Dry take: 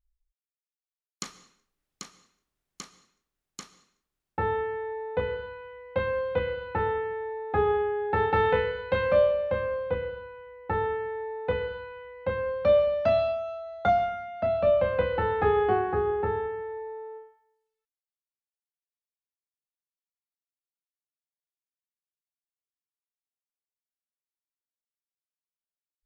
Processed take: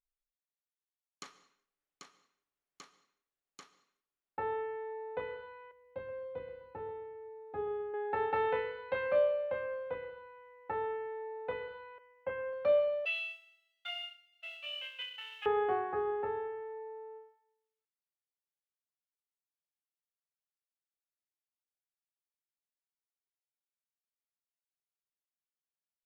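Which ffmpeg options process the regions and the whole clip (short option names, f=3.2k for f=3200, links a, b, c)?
-filter_complex "[0:a]asettb=1/sr,asplit=3[a][b][c];[a]atrim=end=5.714[d];[b]atrim=start=5.71:end=7.94,asetpts=PTS-STARTPTS,afade=t=in:d=0.004:c=qsin,afade=t=out:st=2.226:d=0.004:c=qsin,equalizer=f=1.9k:w=0.33:g=-13.5,aecho=1:1:128|256|384|512:0.211|0.0951|0.0428|0.0193,atrim=end_sample=98343[e];[c]atrim=start=7.936[f];[d][e]acrossfade=d=0.004:c1=hsin:c2=qsin[g];[g][f]acrossfade=d=0.004:c1=qsin:c2=hsin,asettb=1/sr,asplit=3[h][i][j];[h]atrim=end=11.984[k];[i]atrim=start=11.98:end=12.53,asetpts=PTS-STARTPTS,afade=t=in:d=0.004:c=qsin,afade=t=out:st=0.546:d=0.004:c=qsin,agate=range=-33dB:threshold=-38dB:ratio=3:release=100:detection=peak,asuperstop=centerf=3800:order=20:qfactor=3.5[l];[j]atrim=start=12.526[m];[k][l]acrossfade=d=0.004:c1=hsin:c2=qsin[n];[n][m]acrossfade=d=0.004:c1=qsin:c2=hsin,asettb=1/sr,asplit=3[o][p][q];[o]atrim=end=13.054[r];[p]atrim=start=13.05:end=15.46,asetpts=PTS-STARTPTS,afade=t=in:d=0.004:c=qsin,afade=t=out:st=2.406:d=0.004:c=qsin,aeval=exprs='val(0)+0.5*0.0112*sgn(val(0))':c=same,agate=range=-33dB:threshold=-23dB:ratio=3:release=100:detection=peak,highpass=f=2.9k:t=q:w=13[s];[q]atrim=start=15.456[t];[r][s]acrossfade=d=0.004:c1=hsin:c2=qsin[u];[u][t]acrossfade=d=0.004:c1=qsin:c2=hsin,bass=f=250:g=-14,treble=f=4k:g=-9,aecho=1:1:7.1:0.3,volume=-7.5dB"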